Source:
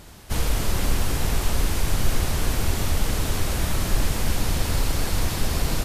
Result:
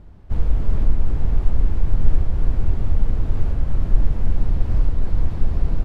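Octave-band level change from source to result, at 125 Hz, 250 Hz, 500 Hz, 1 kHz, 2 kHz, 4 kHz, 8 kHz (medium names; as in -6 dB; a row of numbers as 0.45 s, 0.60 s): +3.0 dB, -2.0 dB, -5.5 dB, -9.5 dB, -14.5 dB, -21.5 dB, under -25 dB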